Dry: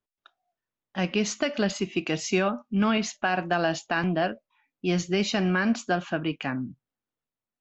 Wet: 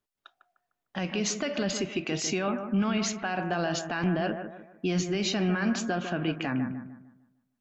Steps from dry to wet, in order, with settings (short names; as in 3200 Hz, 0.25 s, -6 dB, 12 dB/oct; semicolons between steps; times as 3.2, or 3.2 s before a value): limiter -22 dBFS, peak gain reduction 9.5 dB; on a send: analogue delay 0.151 s, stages 2048, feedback 37%, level -8 dB; on the sum: gain +2.5 dB